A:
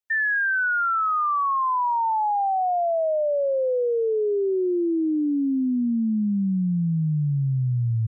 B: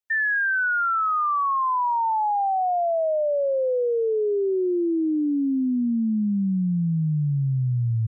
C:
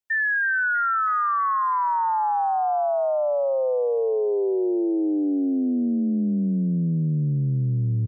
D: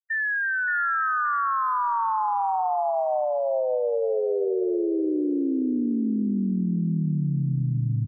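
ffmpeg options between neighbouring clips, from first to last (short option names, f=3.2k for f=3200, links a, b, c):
-af anull
-filter_complex "[0:a]asplit=6[a][b][c][d][e][f];[b]adelay=323,afreqshift=59,volume=-16dB[g];[c]adelay=646,afreqshift=118,volume=-21dB[h];[d]adelay=969,afreqshift=177,volume=-26.1dB[i];[e]adelay=1292,afreqshift=236,volume=-31.1dB[j];[f]adelay=1615,afreqshift=295,volume=-36.1dB[k];[a][g][h][i][j][k]amix=inputs=6:normalize=0"
-af "afftfilt=real='re*gte(hypot(re,im),0.0631)':imag='im*gte(hypot(re,im),0.0631)':win_size=1024:overlap=0.75,aecho=1:1:574|1148|1722:0.562|0.09|0.0144,volume=-3dB"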